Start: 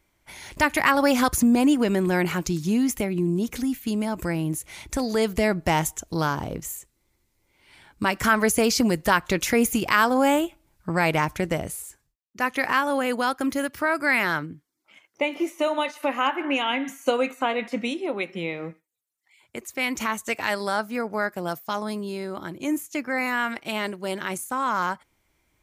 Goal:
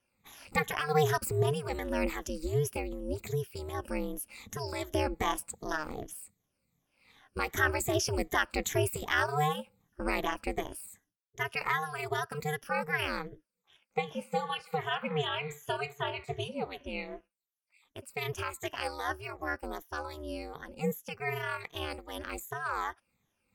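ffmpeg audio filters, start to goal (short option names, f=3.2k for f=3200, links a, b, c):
-af "afftfilt=real='re*pow(10,16/40*sin(2*PI*(1.1*log(max(b,1)*sr/1024/100)/log(2)-(-2.4)*(pts-256)/sr)))':imag='im*pow(10,16/40*sin(2*PI*(1.1*log(max(b,1)*sr/1024/100)/log(2)-(-2.4)*(pts-256)/sr)))':win_size=1024:overlap=0.75,asetrate=48000,aresample=44100,aeval=exprs='val(0)*sin(2*PI*150*n/s)':c=same,volume=-9dB"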